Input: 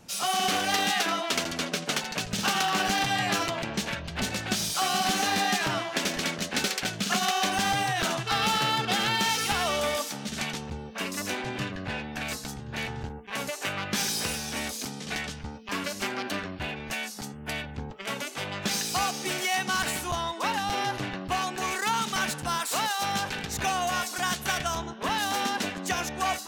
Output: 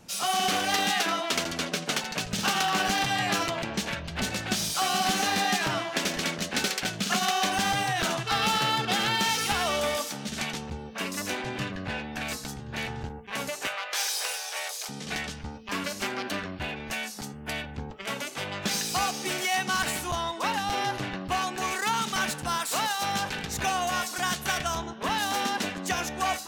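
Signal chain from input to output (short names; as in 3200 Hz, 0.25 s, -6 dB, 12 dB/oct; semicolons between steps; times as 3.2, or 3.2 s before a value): 13.67–14.89 inverse Chebyshev high-pass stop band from 260 Hz, stop band 40 dB; on a send: reverb RT60 0.50 s, pre-delay 6 ms, DRR 18 dB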